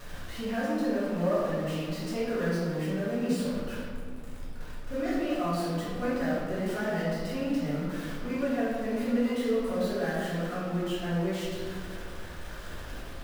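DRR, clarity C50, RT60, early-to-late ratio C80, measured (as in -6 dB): -10.5 dB, -2.0 dB, 2.3 s, 0.5 dB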